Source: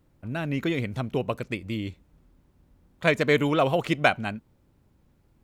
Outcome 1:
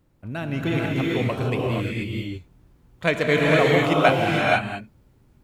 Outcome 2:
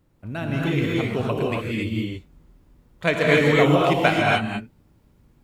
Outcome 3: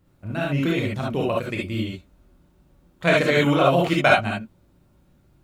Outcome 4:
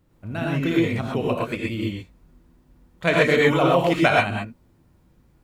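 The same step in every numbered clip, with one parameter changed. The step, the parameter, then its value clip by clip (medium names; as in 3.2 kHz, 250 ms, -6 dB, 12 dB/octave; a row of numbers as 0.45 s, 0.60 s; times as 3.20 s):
gated-style reverb, gate: 510 ms, 310 ms, 90 ms, 150 ms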